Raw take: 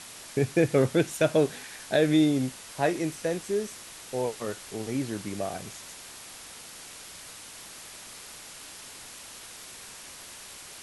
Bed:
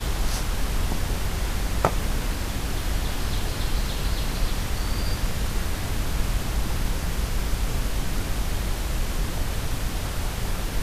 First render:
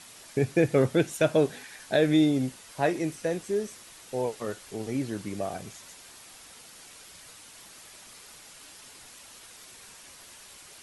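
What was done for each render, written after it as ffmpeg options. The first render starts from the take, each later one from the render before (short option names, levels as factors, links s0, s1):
-af "afftdn=nr=6:nf=-45"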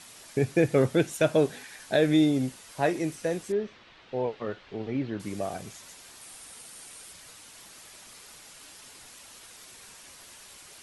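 -filter_complex "[0:a]asettb=1/sr,asplit=3[s0][s1][s2];[s0]atrim=end=3.524[s3];[s1]atrim=start=3.52:end=5.2,asetpts=PTS-STARTPTS,afade=t=in:d=0.004:c=qsin,afade=t=out:st=1.676:d=0.004:c=qsin,lowpass=f=3700:w=0.5412,lowpass=f=3700:w=1.3066[s4];[s2]atrim=start=5.196[s5];[s3][s4]acrossfade=d=0.004:c1=hsin:c2=qsin[s6];[s6][s5]acrossfade=d=0.004:c1=qsin:c2=hsin,asettb=1/sr,asplit=3[s7][s8][s9];[s7]atrim=end=6.214[s10];[s8]atrim=start=6.21:end=7.13,asetpts=PTS-STARTPTS,afade=t=in:d=0.004:c=qsin,afade=t=out:st=0.916:d=0.004:c=qsin,equalizer=f=9200:w=3.5:g=8.5[s11];[s9]atrim=start=7.126[s12];[s10][s11]acrossfade=d=0.004:c1=hsin:c2=qsin[s13];[s13][s12]acrossfade=d=0.004:c1=qsin:c2=hsin"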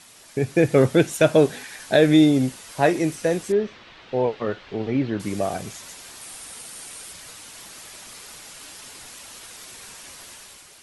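-af "dynaudnorm=f=120:g=9:m=2.37"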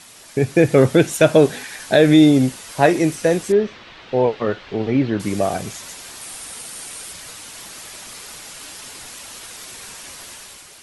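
-af "volume=1.78,alimiter=limit=0.794:level=0:latency=1"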